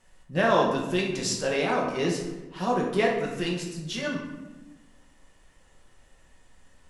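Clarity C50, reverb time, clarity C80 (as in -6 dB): 3.5 dB, 1.1 s, 6.5 dB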